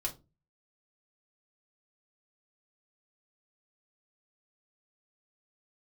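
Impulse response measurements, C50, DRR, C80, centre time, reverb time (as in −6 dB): 15.5 dB, −1.5 dB, 23.0 dB, 11 ms, 0.25 s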